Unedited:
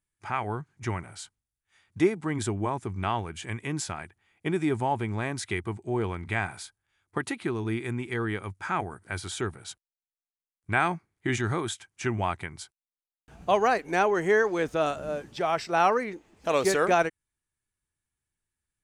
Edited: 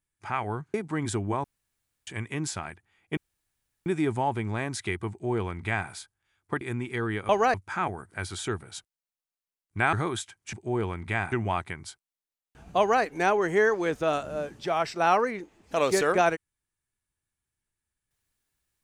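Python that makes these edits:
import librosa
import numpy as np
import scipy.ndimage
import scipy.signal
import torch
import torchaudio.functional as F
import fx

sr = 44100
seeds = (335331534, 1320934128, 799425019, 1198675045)

y = fx.edit(x, sr, fx.cut(start_s=0.74, length_s=1.33),
    fx.room_tone_fill(start_s=2.77, length_s=0.63),
    fx.insert_room_tone(at_s=4.5, length_s=0.69),
    fx.duplicate(start_s=5.74, length_s=0.79, to_s=12.05),
    fx.cut(start_s=7.25, length_s=0.54),
    fx.cut(start_s=10.86, length_s=0.59),
    fx.duplicate(start_s=13.51, length_s=0.25, to_s=8.47), tone=tone)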